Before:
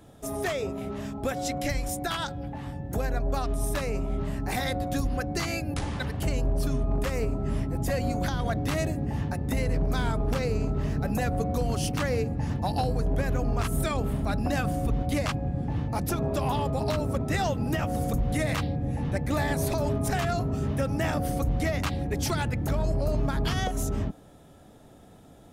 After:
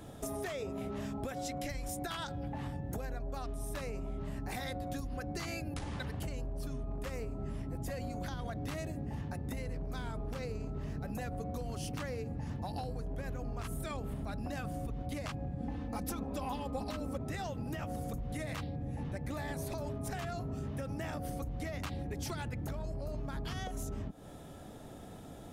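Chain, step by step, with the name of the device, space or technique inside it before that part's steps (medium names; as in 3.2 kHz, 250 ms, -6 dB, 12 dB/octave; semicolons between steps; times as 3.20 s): serial compression, peaks first (compression, threshold -35 dBFS, peak gain reduction 13 dB; compression 2.5:1, threshold -40 dBFS, peak gain reduction 5.5 dB); 15.60–17.17 s: comb 3.9 ms, depth 79%; trim +3 dB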